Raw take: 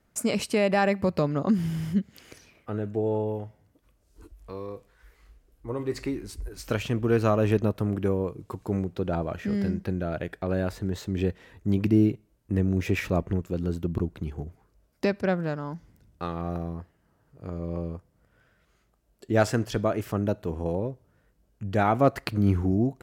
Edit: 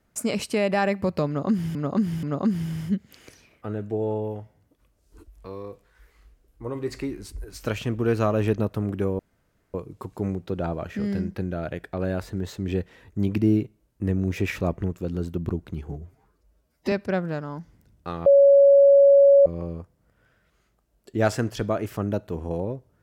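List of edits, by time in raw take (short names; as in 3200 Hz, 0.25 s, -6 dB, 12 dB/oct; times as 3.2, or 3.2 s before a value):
1.27–1.75 loop, 3 plays
8.23 insert room tone 0.55 s
14.39–15.07 stretch 1.5×
16.41–17.61 bleep 559 Hz -10.5 dBFS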